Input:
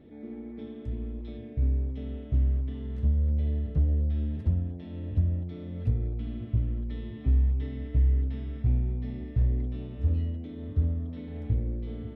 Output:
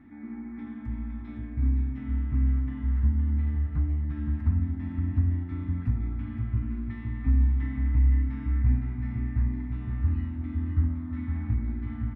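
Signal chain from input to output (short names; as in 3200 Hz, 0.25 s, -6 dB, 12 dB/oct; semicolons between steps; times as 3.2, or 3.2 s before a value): EQ curve 100 Hz 0 dB, 170 Hz -5 dB, 270 Hz +6 dB, 490 Hz -24 dB, 830 Hz +5 dB, 1200 Hz +10 dB, 2100 Hz +8 dB, 3200 Hz -11 dB, 5700 Hz -7 dB; tapped delay 91/342/513 ms -13.5/-11/-6.5 dB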